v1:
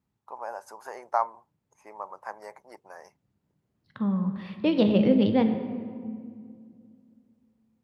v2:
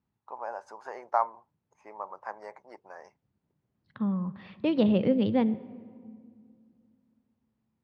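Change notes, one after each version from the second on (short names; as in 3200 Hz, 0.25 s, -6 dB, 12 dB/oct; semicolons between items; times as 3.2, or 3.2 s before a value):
second voice: send -11.5 dB; master: add air absorption 120 m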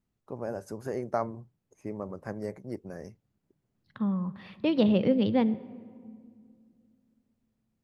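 first voice: remove resonant high-pass 900 Hz, resonance Q 4.4; master: remove air absorption 120 m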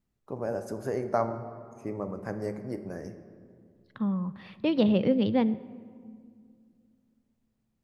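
first voice: send on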